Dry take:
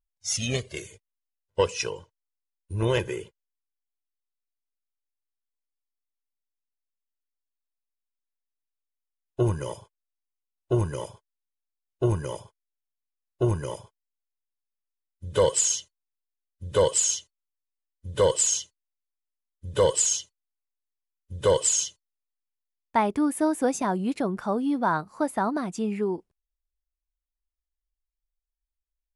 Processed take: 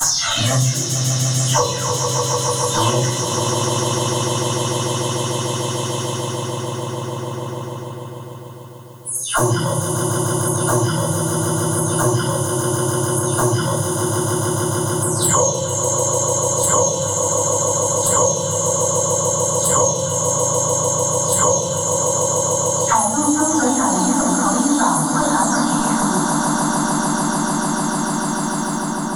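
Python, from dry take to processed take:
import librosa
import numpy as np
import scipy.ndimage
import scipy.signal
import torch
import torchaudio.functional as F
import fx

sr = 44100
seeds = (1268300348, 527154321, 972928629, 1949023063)

y = fx.spec_delay(x, sr, highs='early', ms=330)
y = scipy.signal.sosfilt(scipy.signal.butter(2, 170.0, 'highpass', fs=sr, output='sos'), y)
y = fx.env_flanger(y, sr, rest_ms=10.1, full_db=-22.5)
y = fx.fixed_phaser(y, sr, hz=1000.0, stages=4)
y = fx.echo_swell(y, sr, ms=148, loudest=5, wet_db=-13.0)
y = fx.room_shoebox(y, sr, seeds[0], volume_m3=86.0, walls='mixed', distance_m=2.9)
y = fx.band_squash(y, sr, depth_pct=100)
y = y * 10.0 ** (6.5 / 20.0)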